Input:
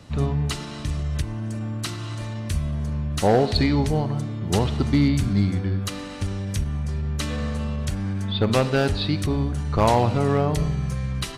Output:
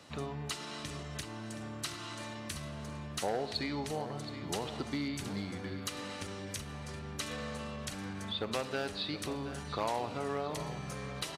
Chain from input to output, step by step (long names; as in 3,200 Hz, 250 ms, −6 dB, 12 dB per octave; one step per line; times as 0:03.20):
high-pass filter 170 Hz 6 dB per octave
low-shelf EQ 250 Hz −11.5 dB
downward compressor 2 to 1, threshold −35 dBFS, peak gain reduction 10.5 dB
on a send: repeating echo 722 ms, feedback 43%, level −12 dB
on the sum: level −3 dB